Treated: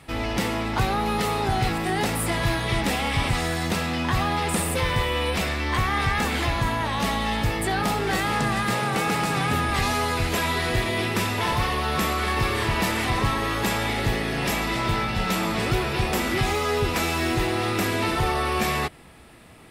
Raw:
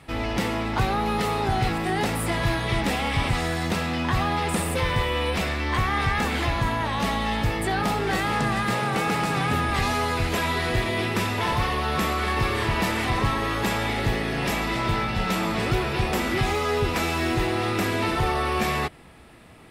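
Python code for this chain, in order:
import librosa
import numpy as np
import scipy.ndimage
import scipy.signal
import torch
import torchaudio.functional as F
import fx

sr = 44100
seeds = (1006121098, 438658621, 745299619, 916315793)

y = fx.high_shelf(x, sr, hz=5000.0, db=5.0)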